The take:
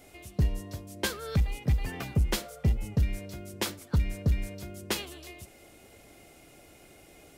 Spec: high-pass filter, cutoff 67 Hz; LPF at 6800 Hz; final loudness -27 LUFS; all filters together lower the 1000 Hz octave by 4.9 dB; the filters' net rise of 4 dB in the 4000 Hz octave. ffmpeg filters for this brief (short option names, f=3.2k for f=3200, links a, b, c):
-af "highpass=67,lowpass=6.8k,equalizer=f=1k:t=o:g=-7,equalizer=f=4k:t=o:g=6,volume=6dB"